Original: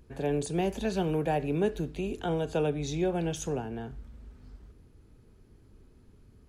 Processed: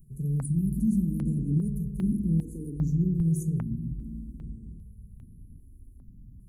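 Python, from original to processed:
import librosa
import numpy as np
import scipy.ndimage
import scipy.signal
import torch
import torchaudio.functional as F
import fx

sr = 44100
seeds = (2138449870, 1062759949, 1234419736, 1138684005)

y = scipy.signal.sosfilt(scipy.signal.ellip(3, 1.0, 50, [220.0, 9700.0], 'bandstop', fs=sr, output='sos'), x)
y = fx.rev_spring(y, sr, rt60_s=3.3, pass_ms=(49, 54), chirp_ms=75, drr_db=2.5)
y = fx.phaser_held(y, sr, hz=2.5, low_hz=260.0, high_hz=7400.0)
y = y * librosa.db_to_amplitude(8.5)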